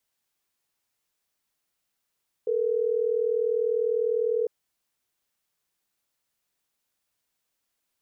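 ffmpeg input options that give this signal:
-f lavfi -i "aevalsrc='0.0562*(sin(2*PI*440*t)+sin(2*PI*480*t))*clip(min(mod(t,6),2-mod(t,6))/0.005,0,1)':d=3.12:s=44100"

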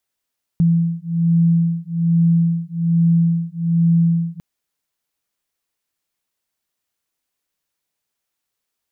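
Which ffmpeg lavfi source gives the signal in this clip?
-f lavfi -i "aevalsrc='0.15*(sin(2*PI*167*t)+sin(2*PI*168.2*t))':d=3.8:s=44100"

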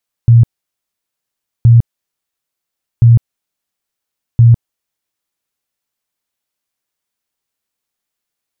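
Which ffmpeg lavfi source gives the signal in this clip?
-f lavfi -i "aevalsrc='0.794*sin(2*PI*117*mod(t,1.37))*lt(mod(t,1.37),18/117)':d=5.48:s=44100"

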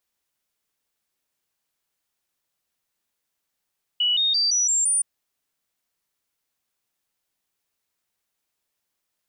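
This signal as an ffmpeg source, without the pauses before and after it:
-f lavfi -i "aevalsrc='0.126*clip(min(mod(t,0.17),0.17-mod(t,0.17))/0.005,0,1)*sin(2*PI*2940*pow(2,floor(t/0.17)/3)*mod(t,0.17))':d=1.02:s=44100"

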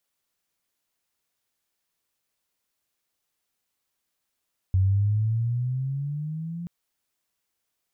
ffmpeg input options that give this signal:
-f lavfi -i "aevalsrc='pow(10,(-17-14*t/1.93)/20)*sin(2*PI*92.5*1.93/(11*log(2)/12)*(exp(11*log(2)/12*t/1.93)-1))':d=1.93:s=44100"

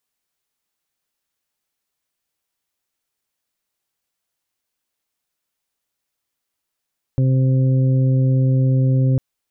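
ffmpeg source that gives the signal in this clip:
-f lavfi -i "aevalsrc='0.224*sin(2*PI*131*t)+0.0668*sin(2*PI*262*t)+0.0237*sin(2*PI*393*t)+0.0316*sin(2*PI*524*t)':d=2:s=44100"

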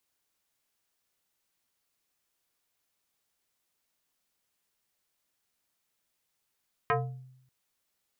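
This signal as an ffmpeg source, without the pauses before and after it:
-f lavfi -i "aevalsrc='0.0891*pow(10,-3*t/0.79)*sin(2*PI*129*t+3.3*pow(10,-3*t/0.47)*sin(2*PI*4.48*129*t))':d=0.59:s=44100"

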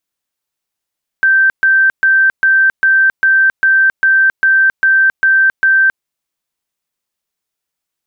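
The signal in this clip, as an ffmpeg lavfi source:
-f lavfi -i "aevalsrc='0.473*sin(2*PI*1560*mod(t,0.4))*lt(mod(t,0.4),420/1560)':d=4.8:s=44100"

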